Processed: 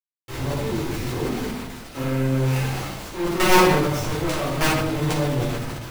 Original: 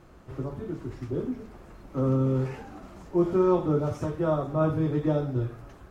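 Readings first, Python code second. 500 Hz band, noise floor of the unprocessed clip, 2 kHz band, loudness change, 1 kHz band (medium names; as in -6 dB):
+3.0 dB, -51 dBFS, +20.5 dB, +5.0 dB, +11.0 dB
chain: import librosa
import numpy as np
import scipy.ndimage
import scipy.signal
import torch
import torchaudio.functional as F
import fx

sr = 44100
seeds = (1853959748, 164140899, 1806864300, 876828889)

y = fx.peak_eq(x, sr, hz=4200.0, db=12.5, octaves=2.8)
y = fx.notch(y, sr, hz=1400.0, q=13.0)
y = fx.quant_companded(y, sr, bits=2)
y = fx.room_shoebox(y, sr, seeds[0], volume_m3=250.0, walls='mixed', distance_m=4.3)
y = fx.sustainer(y, sr, db_per_s=31.0)
y = F.gain(torch.from_numpy(y), -12.5).numpy()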